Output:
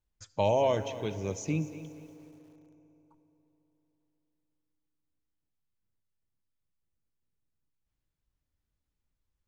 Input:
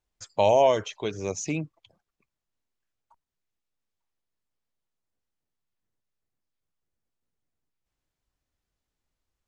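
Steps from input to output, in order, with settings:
bass and treble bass +8 dB, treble −2 dB
notch filter 710 Hz, Q 12
feedback delay network reverb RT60 3.8 s, high-frequency decay 0.65×, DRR 14.5 dB
feedback echo at a low word length 239 ms, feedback 35%, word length 8 bits, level −14 dB
level −6 dB

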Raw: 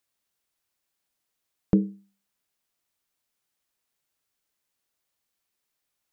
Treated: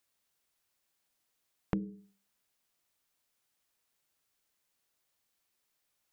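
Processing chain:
mains-hum notches 60/120/180/240/300/360/420 Hz
downward compressor 6 to 1, threshold −32 dBFS, peak gain reduction 14.5 dB
level +1 dB

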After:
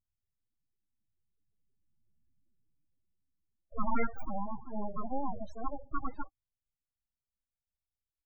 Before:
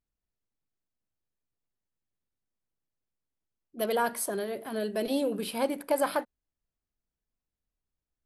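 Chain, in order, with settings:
source passing by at 0:02.26, 8 m/s, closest 3.3 metres
full-wave rectification
spectral peaks only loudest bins 8
level +16 dB

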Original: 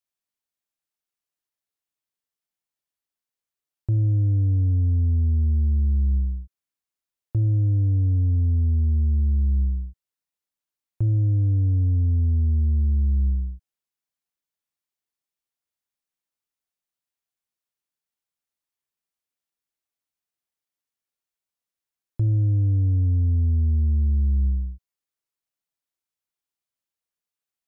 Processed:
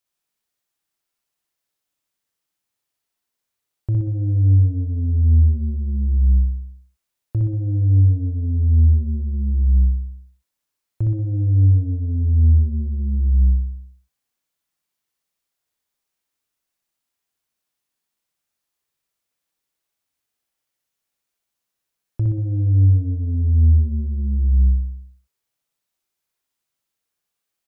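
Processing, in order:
brickwall limiter −22.5 dBFS, peak gain reduction 5 dB
on a send: repeating echo 62 ms, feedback 58%, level −3.5 dB
on the sum: level +6.5 dB

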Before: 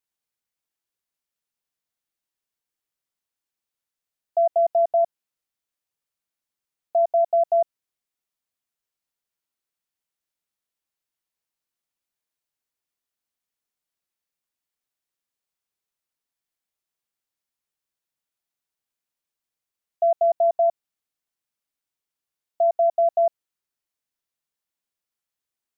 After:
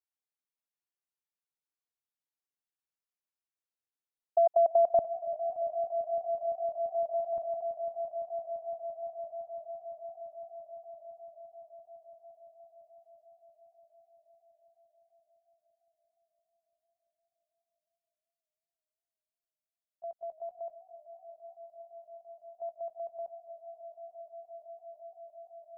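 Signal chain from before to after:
parametric band 720 Hz +4 dB 2.8 octaves, from 0:04.99 −8 dB, from 0:07.38 −14.5 dB
output level in coarse steps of 16 dB
echo that builds up and dies away 170 ms, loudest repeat 8, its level −18 dB
feedback echo with a swinging delay time 288 ms, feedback 79%, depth 110 cents, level −22 dB
level −6 dB

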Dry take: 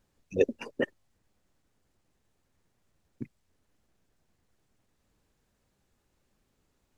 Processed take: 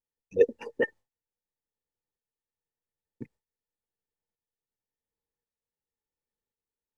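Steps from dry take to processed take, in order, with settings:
shaped tremolo saw up 0.92 Hz, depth 50%
hollow resonant body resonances 470/870/1,800 Hz, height 13 dB, ringing for 45 ms
noise gate with hold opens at −58 dBFS
level −3 dB

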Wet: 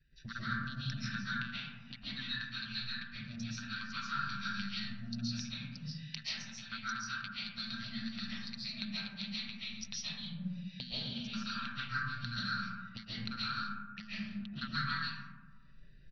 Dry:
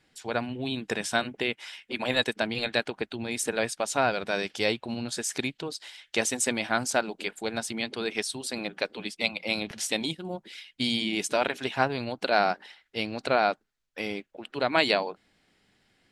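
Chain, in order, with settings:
adaptive Wiener filter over 41 samples
inverse Chebyshev band-stop filter 370–840 Hz, stop band 50 dB
comb filter 5.1 ms, depth 58%
transient designer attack +7 dB, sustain −2 dB
downward compressor 16 to 1, threshold −48 dBFS, peak gain reduction 34 dB
phaser swept by the level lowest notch 190 Hz, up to 4,100 Hz, full sweep at −34.5 dBFS
Chebyshev low-pass with heavy ripple 5,900 Hz, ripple 6 dB
comb and all-pass reverb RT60 1.5 s, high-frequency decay 0.3×, pre-delay 100 ms, DRR −10 dB
level +13 dB

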